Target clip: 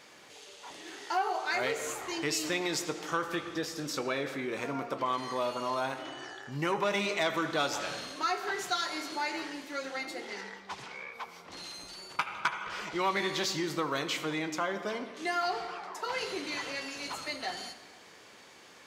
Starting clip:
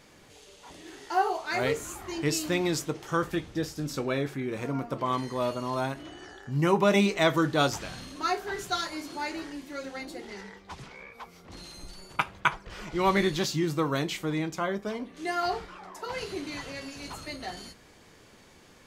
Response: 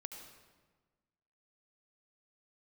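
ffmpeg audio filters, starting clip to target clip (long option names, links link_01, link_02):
-filter_complex "[0:a]asplit=2[link_01][link_02];[1:a]atrim=start_sample=2205,lowpass=8200[link_03];[link_02][link_03]afir=irnorm=-1:irlink=0,volume=1dB[link_04];[link_01][link_04]amix=inputs=2:normalize=0,asoftclip=type=tanh:threshold=-12dB,highpass=frequency=660:poles=1,acompressor=threshold=-30dB:ratio=2"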